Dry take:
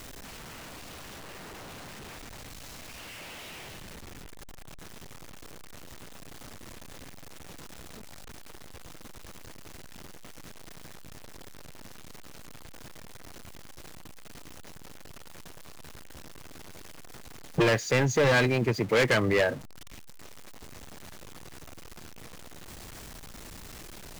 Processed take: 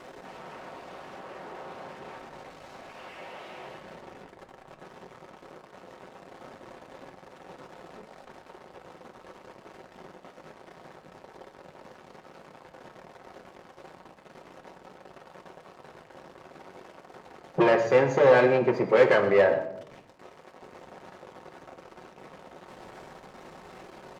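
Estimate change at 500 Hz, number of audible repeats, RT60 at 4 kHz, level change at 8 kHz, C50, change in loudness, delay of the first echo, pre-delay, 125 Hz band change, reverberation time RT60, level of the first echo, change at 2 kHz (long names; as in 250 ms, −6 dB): +6.0 dB, 1, 0.50 s, below −10 dB, 9.0 dB, +7.5 dB, 123 ms, 5 ms, −6.0 dB, 0.80 s, −14.5 dB, −1.0 dB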